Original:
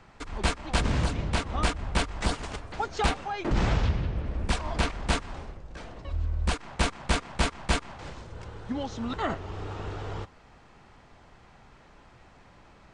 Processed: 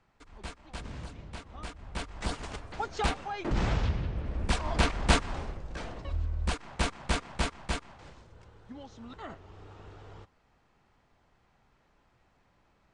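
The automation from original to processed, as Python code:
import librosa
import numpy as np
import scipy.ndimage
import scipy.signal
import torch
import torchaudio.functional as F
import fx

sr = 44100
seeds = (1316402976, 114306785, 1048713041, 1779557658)

y = fx.gain(x, sr, db=fx.line((1.65, -15.5), (2.43, -3.5), (4.17, -3.5), (5.1, 3.0), (5.87, 3.0), (6.29, -3.5), (7.32, -3.5), (8.51, -13.5)))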